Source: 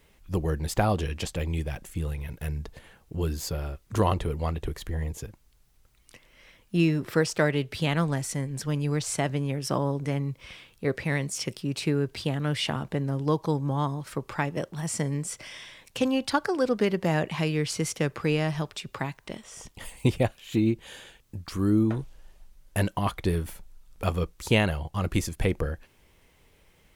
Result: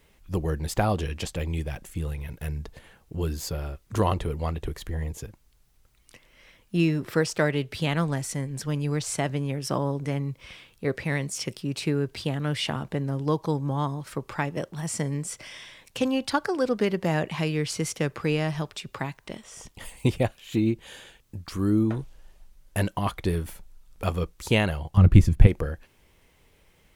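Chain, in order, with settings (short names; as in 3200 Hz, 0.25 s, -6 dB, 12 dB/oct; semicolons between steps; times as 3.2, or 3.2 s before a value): 24.97–25.47 tone controls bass +15 dB, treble -8 dB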